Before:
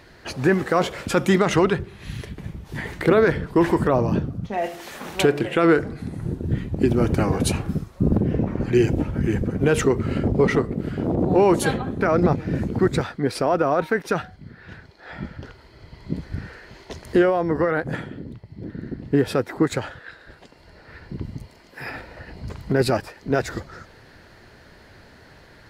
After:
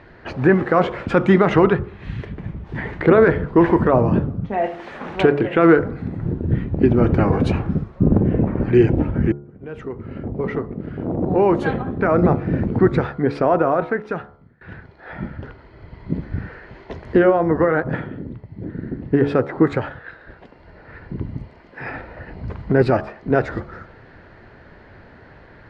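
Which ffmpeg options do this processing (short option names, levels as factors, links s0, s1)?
-filter_complex "[0:a]asplit=3[s0][s1][s2];[s0]atrim=end=9.32,asetpts=PTS-STARTPTS,afade=t=out:st=9.316:d=0.004:c=hsin[s3];[s1]atrim=start=9.32:end=14.61,asetpts=PTS-STARTPTS,afade=t=in:d=3.28,afade=t=out:st=4.16:d=1.13:silence=0.0841395[s4];[s2]atrim=start=14.61,asetpts=PTS-STARTPTS,afade=t=in:d=0.004:c=hsin:silence=0.0841395[s5];[s3][s4][s5]concat=n=3:v=0:a=1,lowpass=2000,bandreject=f=71.05:t=h:w=4,bandreject=f=142.1:t=h:w=4,bandreject=f=213.15:t=h:w=4,bandreject=f=284.2:t=h:w=4,bandreject=f=355.25:t=h:w=4,bandreject=f=426.3:t=h:w=4,bandreject=f=497.35:t=h:w=4,bandreject=f=568.4:t=h:w=4,bandreject=f=639.45:t=h:w=4,bandreject=f=710.5:t=h:w=4,bandreject=f=781.55:t=h:w=4,bandreject=f=852.6:t=h:w=4,bandreject=f=923.65:t=h:w=4,bandreject=f=994.7:t=h:w=4,bandreject=f=1065.75:t=h:w=4,bandreject=f=1136.8:t=h:w=4,bandreject=f=1207.85:t=h:w=4,bandreject=f=1278.9:t=h:w=4,bandreject=f=1349.95:t=h:w=4,bandreject=f=1421:t=h:w=4,volume=1.68"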